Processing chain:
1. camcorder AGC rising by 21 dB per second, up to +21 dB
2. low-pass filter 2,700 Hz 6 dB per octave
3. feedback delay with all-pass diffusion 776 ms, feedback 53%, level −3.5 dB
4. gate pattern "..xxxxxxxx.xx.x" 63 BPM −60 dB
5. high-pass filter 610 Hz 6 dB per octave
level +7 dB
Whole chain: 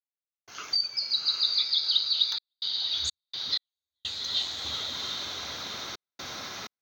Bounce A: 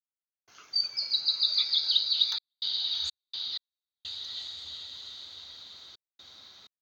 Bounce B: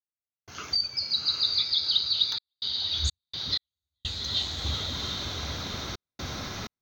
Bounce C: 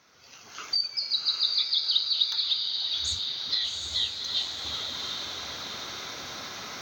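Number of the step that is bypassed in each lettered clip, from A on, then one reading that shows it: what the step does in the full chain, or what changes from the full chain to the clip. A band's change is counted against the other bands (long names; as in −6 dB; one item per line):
1, change in crest factor +1.5 dB
5, 250 Hz band +8.0 dB
4, change in momentary loudness spread −2 LU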